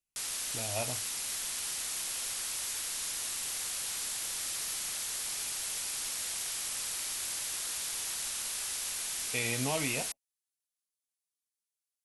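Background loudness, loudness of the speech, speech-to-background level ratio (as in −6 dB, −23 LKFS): −33.5 LKFS, −36.0 LKFS, −2.5 dB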